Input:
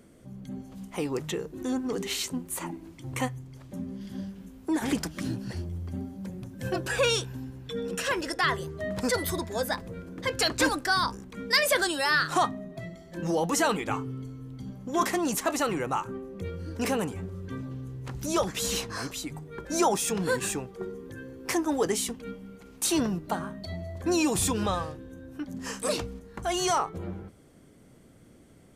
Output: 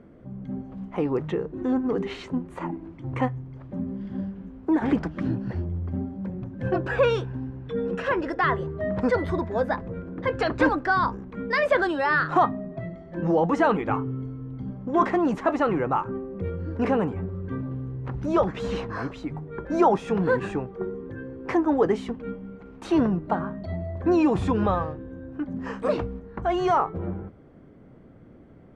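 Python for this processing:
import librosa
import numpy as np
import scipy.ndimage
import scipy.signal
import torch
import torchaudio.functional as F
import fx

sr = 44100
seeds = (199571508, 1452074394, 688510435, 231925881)

y = scipy.signal.sosfilt(scipy.signal.butter(2, 1500.0, 'lowpass', fs=sr, output='sos'), x)
y = y * 10.0 ** (5.5 / 20.0)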